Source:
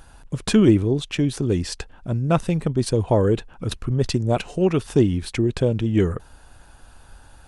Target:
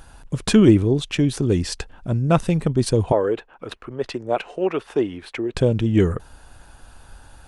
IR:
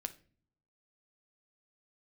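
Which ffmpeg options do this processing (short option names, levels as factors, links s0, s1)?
-filter_complex "[0:a]asettb=1/sr,asplit=3[s0][s1][s2];[s0]atrim=end=3.124[s3];[s1]atrim=start=3.12:end=5.55,asetpts=PTS-STARTPTS,afade=t=in:d=0.004:c=qsin,afade=t=out:st=2.426:d=0.004:c=qsin,acrossover=split=340 3100:gain=0.1 1 0.178[s4][s5][s6];[s4][s5][s6]amix=inputs=3:normalize=0[s7];[s2]atrim=start=5.546[s8];[s3][s7]acrossfade=d=0.004:c1=hsin:c2=qsin[s9];[s9][s8]acrossfade=d=0.004:c1=qsin:c2=hsin,volume=1.26"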